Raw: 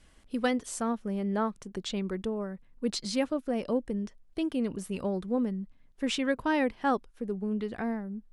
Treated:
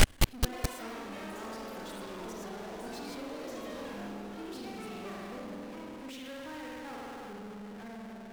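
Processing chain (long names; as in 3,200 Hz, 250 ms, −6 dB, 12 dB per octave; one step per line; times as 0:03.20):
spring reverb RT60 2.5 s, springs 49 ms, chirp 30 ms, DRR −4 dB
power curve on the samples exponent 0.35
gate with flip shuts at −24 dBFS, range −39 dB
delay with pitch and tempo change per echo 214 ms, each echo +6 semitones, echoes 3
level +12.5 dB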